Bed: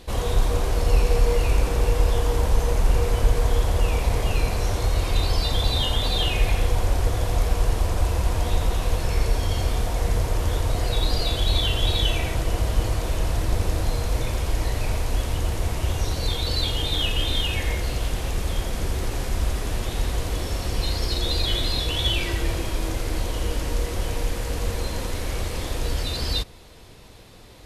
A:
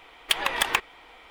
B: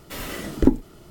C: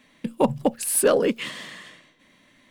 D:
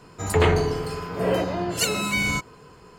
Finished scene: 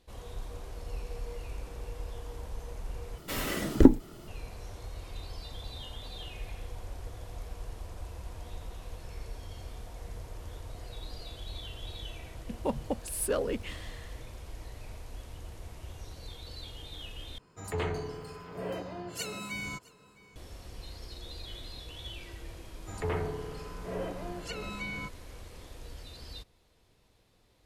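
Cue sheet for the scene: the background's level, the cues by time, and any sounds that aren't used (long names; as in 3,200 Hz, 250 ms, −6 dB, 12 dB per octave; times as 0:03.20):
bed −20 dB
0:03.18: overwrite with B −0.5 dB
0:12.25: mix in C −11.5 dB
0:17.38: overwrite with D −14 dB + single-tap delay 660 ms −22.5 dB
0:22.68: mix in D −13.5 dB + treble cut that deepens with the level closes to 2,200 Hz, closed at −18 dBFS
not used: A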